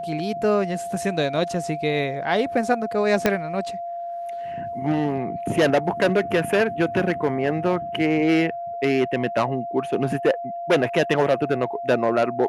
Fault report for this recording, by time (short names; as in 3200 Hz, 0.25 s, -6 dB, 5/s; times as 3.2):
tone 690 Hz -28 dBFS
3.26 pop -4 dBFS